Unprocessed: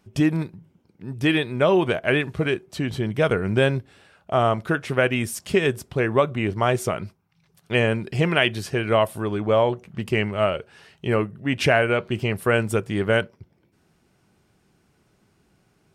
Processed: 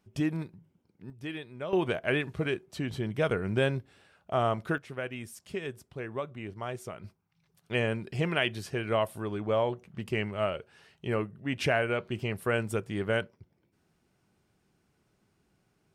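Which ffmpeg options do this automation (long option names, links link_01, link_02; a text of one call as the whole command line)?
ffmpeg -i in.wav -af "asetnsamples=nb_out_samples=441:pad=0,asendcmd='1.1 volume volume -18dB;1.73 volume volume -7.5dB;4.78 volume volume -16dB;7.04 volume volume -8.5dB',volume=-9.5dB" out.wav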